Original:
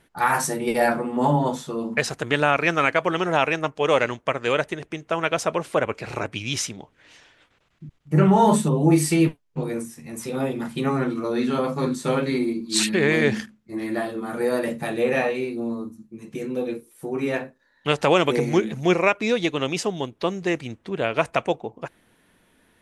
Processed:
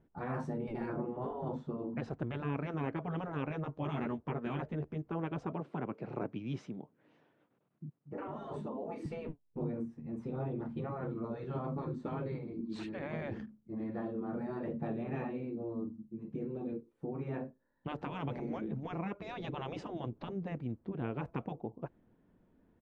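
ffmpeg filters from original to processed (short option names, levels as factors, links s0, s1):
-filter_complex "[0:a]asettb=1/sr,asplit=3[s0][s1][s2];[s0]atrim=end=3.494[s3];[s1]atrim=start=3.49:end=5.02,asetpts=PTS-STARTPTS,afade=t=in:d=0.004:c=qsin,afade=t=out:st=1.526:d=0.004:c=qsin,asplit=2[s4][s5];[s5]adelay=13,volume=0.75[s6];[s4][s6]amix=inputs=2:normalize=0,atrim=end_sample=67473[s7];[s2]atrim=start=5.016[s8];[s3][s7]acrossfade=d=0.004:c1=hsin:c2=qsin[s9];[s9][s8]acrossfade=d=0.004:c1=qsin:c2=hsin,asettb=1/sr,asplit=3[s10][s11][s12];[s10]atrim=end=5.524[s13];[s11]atrim=start=5.52:end=9.06,asetpts=PTS-STARTPTS,afade=t=in:d=0.004:c=qsin,afade=t=out:st=3.536:d=0.004:c=qsin,highpass=f=140:w=0.5412,highpass=f=140:w=1.3066[s14];[s12]atrim=start=9.056[s15];[s13][s14]acrossfade=d=0.004:c1=hsin:c2=qsin[s16];[s16][s15]acrossfade=d=0.004:c1=qsin:c2=hsin,asplit=3[s17][s18][s19];[s17]atrim=end=19.202[s20];[s18]atrim=start=19.198:end=20.292,asetpts=PTS-STARTPTS,volume=2.11[s21];[s19]atrim=start=20.288[s22];[s20][s21]acrossfade=d=0.004:c1=hsin:c2=hsin[s23];[s23][s22]acrossfade=d=0.004:c1=hsin:c2=hsin,lowpass=2700,afftfilt=real='re*lt(hypot(re,im),0.316)':imag='im*lt(hypot(re,im),0.316)':win_size=1024:overlap=0.75,firequalizer=gain_entry='entry(220,0);entry(500,-5);entry(1900,-19)':delay=0.05:min_phase=1,volume=0.668"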